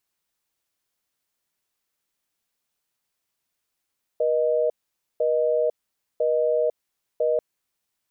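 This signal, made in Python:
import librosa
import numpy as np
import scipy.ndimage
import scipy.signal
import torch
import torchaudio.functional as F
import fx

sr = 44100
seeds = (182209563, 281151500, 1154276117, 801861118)

y = fx.call_progress(sr, length_s=3.19, kind='busy tone', level_db=-21.5)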